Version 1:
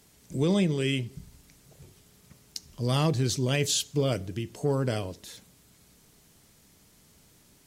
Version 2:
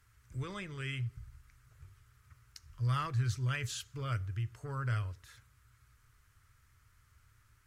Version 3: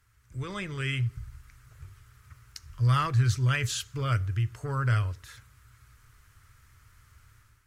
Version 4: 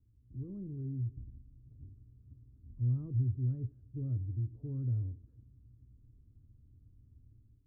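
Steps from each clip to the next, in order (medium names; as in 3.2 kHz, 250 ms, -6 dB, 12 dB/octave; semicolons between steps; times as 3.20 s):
FFT filter 120 Hz 0 dB, 160 Hz -24 dB, 400 Hz -21 dB, 770 Hz -20 dB, 1.3 kHz +2 dB, 3.6 kHz -16 dB; trim +1 dB
level rider gain up to 8.5 dB
companding laws mixed up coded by mu; four-pole ladder low-pass 320 Hz, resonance 50%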